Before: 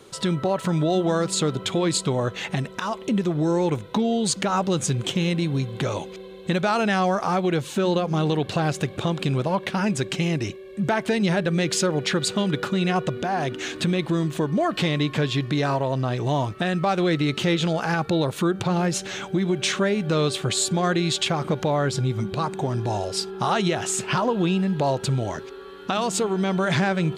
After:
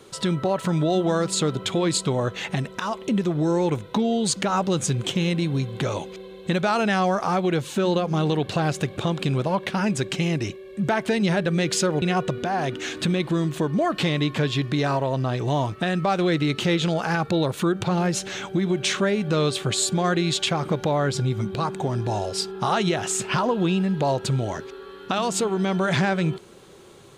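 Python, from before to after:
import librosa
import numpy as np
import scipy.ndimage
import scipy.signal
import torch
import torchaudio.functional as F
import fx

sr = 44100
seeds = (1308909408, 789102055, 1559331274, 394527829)

y = fx.edit(x, sr, fx.cut(start_s=12.02, length_s=0.79), tone=tone)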